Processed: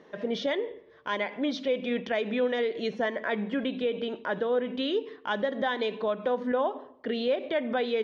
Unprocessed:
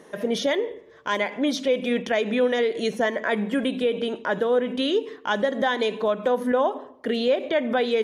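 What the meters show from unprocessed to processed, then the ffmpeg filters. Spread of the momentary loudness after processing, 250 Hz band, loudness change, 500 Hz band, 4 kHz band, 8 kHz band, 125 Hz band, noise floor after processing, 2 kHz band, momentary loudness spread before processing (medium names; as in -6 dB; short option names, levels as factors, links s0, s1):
5 LU, -5.5 dB, -5.5 dB, -5.5 dB, -6.0 dB, no reading, -5.5 dB, -55 dBFS, -5.5 dB, 5 LU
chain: -af "lowpass=f=4800:w=0.5412,lowpass=f=4800:w=1.3066,volume=0.531"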